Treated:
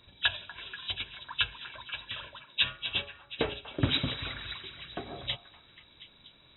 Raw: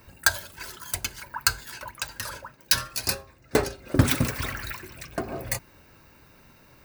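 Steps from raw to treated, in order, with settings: nonlinear frequency compression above 2100 Hz 4:1; delay with a stepping band-pass 0.251 s, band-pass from 1000 Hz, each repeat 0.7 oct, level -10 dB; speed mistake 24 fps film run at 25 fps; gain -8.5 dB

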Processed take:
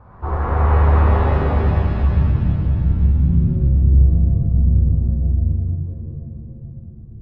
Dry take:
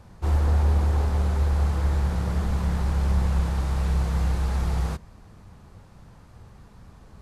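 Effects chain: low-pass sweep 1200 Hz -> 130 Hz, 1.02–1.75; shimmer reverb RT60 3.2 s, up +7 st, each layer -8 dB, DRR -7.5 dB

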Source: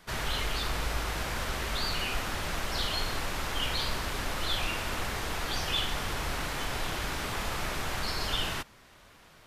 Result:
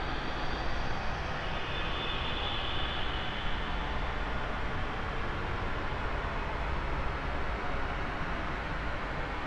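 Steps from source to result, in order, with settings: Paulstretch 9.1×, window 0.25 s, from 5.5; LPF 2200 Hz 12 dB/oct

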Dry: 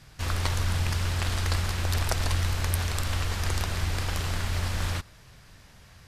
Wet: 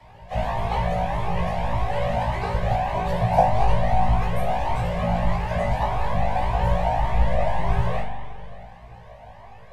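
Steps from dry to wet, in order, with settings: EQ curve 120 Hz 0 dB, 170 Hz -29 dB, 370 Hz -5 dB, 660 Hz +11 dB, 1700 Hz +1 dB, 5100 Hz -22 dB, 14000 Hz -25 dB; in parallel at -0.5 dB: compressor, threshold -31 dBFS, peak gain reduction 13 dB; on the sum: plain phase-vocoder stretch 1.6×; fixed phaser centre 350 Hz, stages 6; frequency shift +27 Hz; whisperiser; on a send: flutter echo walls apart 3 m, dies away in 0.37 s; on the sum: spring tank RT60 2.2 s, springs 40 ms, chirp 60 ms, DRR 3.5 dB; cascading flanger rising 1.7 Hz; gain +9 dB

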